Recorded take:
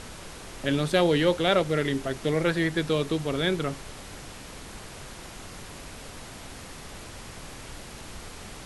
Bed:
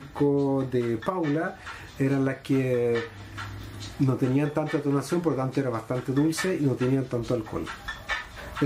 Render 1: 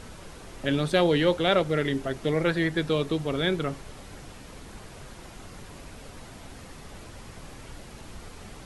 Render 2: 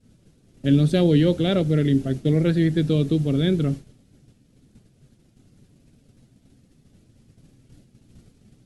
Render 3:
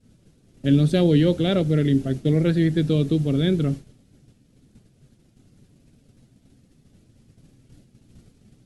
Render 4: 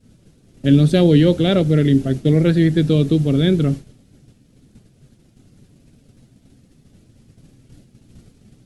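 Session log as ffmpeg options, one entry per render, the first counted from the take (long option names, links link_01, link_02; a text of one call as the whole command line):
ffmpeg -i in.wav -af "afftdn=noise_reduction=6:noise_floor=-43" out.wav
ffmpeg -i in.wav -af "agate=range=-33dB:threshold=-31dB:ratio=3:detection=peak,equalizer=frequency=125:width_type=o:width=1:gain=11,equalizer=frequency=250:width_type=o:width=1:gain=9,equalizer=frequency=1000:width_type=o:width=1:gain=-12,equalizer=frequency=2000:width_type=o:width=1:gain=-4" out.wav
ffmpeg -i in.wav -af anull out.wav
ffmpeg -i in.wav -af "volume=5dB" out.wav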